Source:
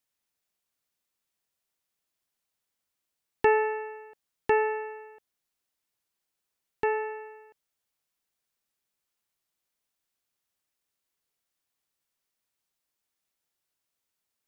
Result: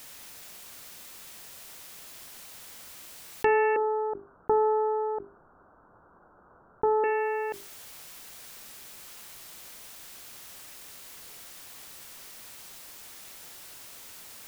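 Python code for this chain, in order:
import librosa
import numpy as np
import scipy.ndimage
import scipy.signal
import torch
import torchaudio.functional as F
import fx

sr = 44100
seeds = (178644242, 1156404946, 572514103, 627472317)

y = fx.steep_lowpass(x, sr, hz=1500.0, slope=96, at=(3.76, 7.04))
y = fx.hum_notches(y, sr, base_hz=50, count=8)
y = fx.env_flatten(y, sr, amount_pct=70)
y = y * 10.0 ** (-2.5 / 20.0)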